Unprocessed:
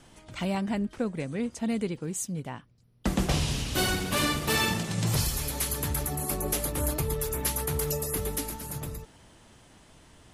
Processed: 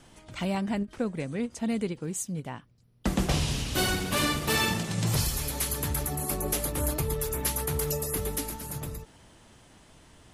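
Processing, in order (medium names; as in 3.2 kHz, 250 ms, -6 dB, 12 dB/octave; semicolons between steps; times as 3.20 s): endings held to a fixed fall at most 420 dB/s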